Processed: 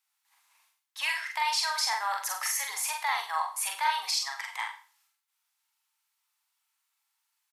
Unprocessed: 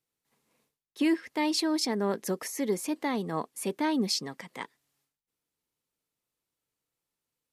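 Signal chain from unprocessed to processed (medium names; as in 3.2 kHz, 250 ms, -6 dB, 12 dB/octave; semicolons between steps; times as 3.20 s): elliptic high-pass 850 Hz, stop band 60 dB; peak limiter -27 dBFS, peak gain reduction 9.5 dB; doubling 44 ms -4 dB; Schroeder reverb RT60 0.38 s, combs from 33 ms, DRR 6.5 dB; trim +7 dB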